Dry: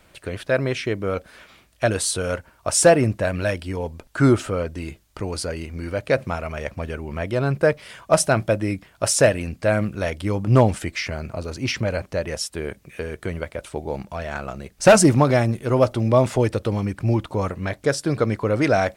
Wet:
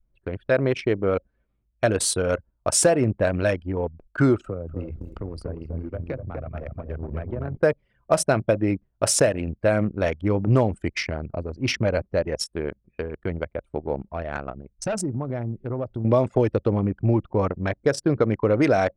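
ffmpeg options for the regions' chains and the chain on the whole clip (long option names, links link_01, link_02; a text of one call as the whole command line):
ffmpeg -i in.wav -filter_complex "[0:a]asettb=1/sr,asplit=3[link_01][link_02][link_03];[link_01]atrim=end=4.444[link_04];[link_02]atrim=start=4.44:end=7.57,asetpts=PTS-STARTPTS,afade=type=in:duration=0.004:curve=qsin,afade=type=out:start_time=3.126:duration=0.004:curve=qsin,aeval=exprs='val(0)+0.5*0.0251*sgn(val(0))':channel_layout=same,acrossover=split=85|240[link_05][link_06][link_07];[link_05]acompressor=threshold=-36dB:ratio=4[link_08];[link_06]acompressor=threshold=-38dB:ratio=4[link_09];[link_07]acompressor=threshold=-33dB:ratio=4[link_10];[link_08][link_09][link_10]amix=inputs=3:normalize=0,asplit=2[link_11][link_12];[link_12]adelay=247,lowpass=frequency=3100:poles=1,volume=-4dB,asplit=2[link_13][link_14];[link_14]adelay=247,lowpass=frequency=3100:poles=1,volume=0.48,asplit=2[link_15][link_16];[link_16]adelay=247,lowpass=frequency=3100:poles=1,volume=0.48,asplit=2[link_17][link_18];[link_18]adelay=247,lowpass=frequency=3100:poles=1,volume=0.48,asplit=2[link_19][link_20];[link_20]adelay=247,lowpass=frequency=3100:poles=1,volume=0.48,asplit=2[link_21][link_22];[link_22]adelay=247,lowpass=frequency=3100:poles=1,volume=0.48[link_23];[link_11][link_13][link_15][link_17][link_19][link_21][link_23]amix=inputs=7:normalize=0,atrim=end_sample=138033[link_24];[link_03]atrim=start=7.566[link_25];[link_04][link_24]acrossfade=duration=0.004:curve1=hsin:curve2=qsin[link_26];[link_26][link_25]acrossfade=duration=0.004:curve1=qsin:curve2=hsin,asettb=1/sr,asplit=3[link_27][link_28][link_29];[link_27]atrim=end=14.704[link_30];[link_28]atrim=start=14.7:end=16.05,asetpts=PTS-STARTPTS,afade=type=in:duration=0.004:curve=qsin,afade=type=out:start_time=1.346:duration=0.004:curve=qsin,equalizer=frequency=850:width=0.34:gain=-3.5,acompressor=threshold=-25dB:ratio=5:attack=3.2:release=140:knee=1:detection=peak[link_31];[link_29]atrim=start=16.046[link_32];[link_30][link_31]acrossfade=duration=0.004:curve1=hsin:curve2=qsin[link_33];[link_33][link_32]acrossfade=duration=0.004:curve1=qsin:curve2=hsin,anlmdn=158,adynamicequalizer=threshold=0.0447:dfrequency=400:dqfactor=0.74:tfrequency=400:tqfactor=0.74:attack=5:release=100:ratio=0.375:range=2:mode=boostabove:tftype=bell,acompressor=threshold=-15dB:ratio=6" out.wav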